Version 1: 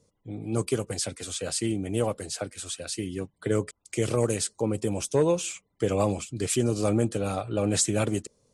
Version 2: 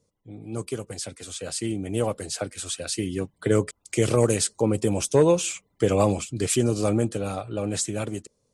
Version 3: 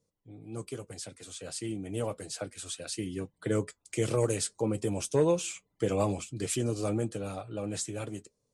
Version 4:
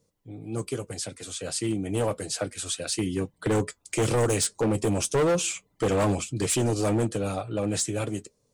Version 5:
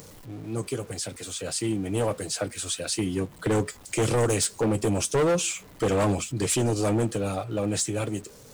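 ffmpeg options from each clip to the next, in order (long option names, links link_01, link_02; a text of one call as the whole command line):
ffmpeg -i in.wav -af "dynaudnorm=framelen=310:gausssize=13:maxgain=11.5dB,volume=-4.5dB" out.wav
ffmpeg -i in.wav -af "flanger=delay=5.9:depth=1.3:regen=-61:speed=1.7:shape=triangular,volume=-3.5dB" out.wav
ffmpeg -i in.wav -af "volume=27.5dB,asoftclip=hard,volume=-27.5dB,volume=8dB" out.wav
ffmpeg -i in.wav -af "aeval=exprs='val(0)+0.5*0.00668*sgn(val(0))':channel_layout=same,acompressor=mode=upward:threshold=-45dB:ratio=2.5" out.wav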